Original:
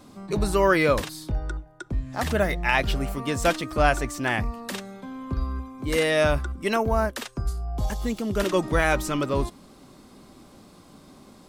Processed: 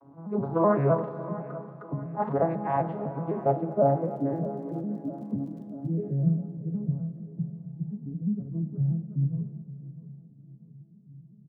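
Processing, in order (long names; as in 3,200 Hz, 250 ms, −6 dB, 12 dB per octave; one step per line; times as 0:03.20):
vocoder with an arpeggio as carrier minor triad, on C#3, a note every 127 ms
speech leveller within 4 dB 2 s
low-pass filter sweep 940 Hz → 140 Hz, 0:02.94–0:06.77
0:03.71–0:05.88: surface crackle 26 per second −46 dBFS
flanger 1.2 Hz, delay 8.4 ms, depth 8.5 ms, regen −73%
repeating echo 643 ms, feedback 46%, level −16 dB
convolution reverb RT60 3.3 s, pre-delay 32 ms, DRR 11.5 dB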